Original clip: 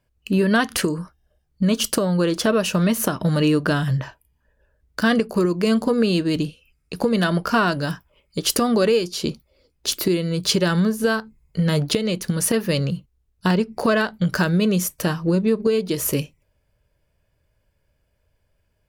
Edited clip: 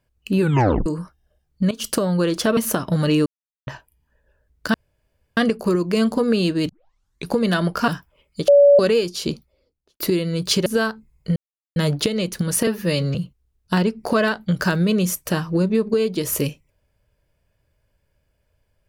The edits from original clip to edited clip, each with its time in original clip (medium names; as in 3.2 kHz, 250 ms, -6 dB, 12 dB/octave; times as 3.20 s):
0.40 s: tape stop 0.46 s
1.71–1.97 s: fade in, from -18.5 dB
2.57–2.90 s: delete
3.59–4.00 s: mute
5.07 s: insert room tone 0.63 s
6.39 s: tape start 0.59 s
7.58–7.86 s: delete
8.46–8.77 s: bleep 570 Hz -7.5 dBFS
9.27–9.98 s: studio fade out
10.64–10.95 s: delete
11.65 s: insert silence 0.40 s
12.56–12.88 s: stretch 1.5×